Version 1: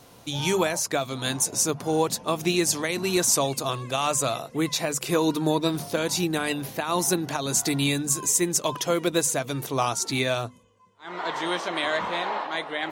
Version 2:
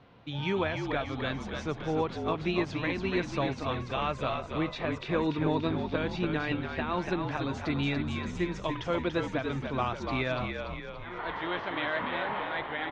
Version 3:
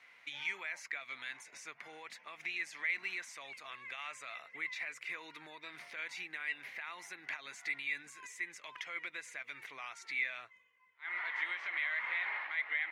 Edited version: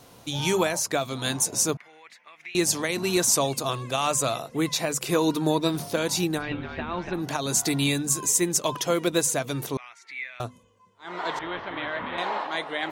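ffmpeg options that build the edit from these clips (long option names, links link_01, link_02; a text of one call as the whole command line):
ffmpeg -i take0.wav -i take1.wav -i take2.wav -filter_complex "[2:a]asplit=2[link_01][link_02];[1:a]asplit=2[link_03][link_04];[0:a]asplit=5[link_05][link_06][link_07][link_08][link_09];[link_05]atrim=end=1.772[link_10];[link_01]atrim=start=1.768:end=2.552[link_11];[link_06]atrim=start=2.548:end=6.43[link_12];[link_03]atrim=start=6.33:end=7.23[link_13];[link_07]atrim=start=7.13:end=9.772[link_14];[link_02]atrim=start=9.768:end=10.402[link_15];[link_08]atrim=start=10.398:end=11.392[link_16];[link_04]atrim=start=11.388:end=12.182[link_17];[link_09]atrim=start=12.178[link_18];[link_10][link_11]acrossfade=duration=0.004:curve1=hsin:curve2=hsin[link_19];[link_19][link_12]acrossfade=duration=0.004:curve1=hsin:curve2=hsin[link_20];[link_20][link_13]acrossfade=duration=0.1:curve1=tri:curve2=tri[link_21];[link_21][link_14]acrossfade=duration=0.1:curve1=tri:curve2=tri[link_22];[link_22][link_15]acrossfade=duration=0.004:curve1=hsin:curve2=hsin[link_23];[link_23][link_16]acrossfade=duration=0.004:curve1=hsin:curve2=hsin[link_24];[link_24][link_17]acrossfade=duration=0.004:curve1=hsin:curve2=hsin[link_25];[link_25][link_18]acrossfade=duration=0.004:curve1=hsin:curve2=hsin" out.wav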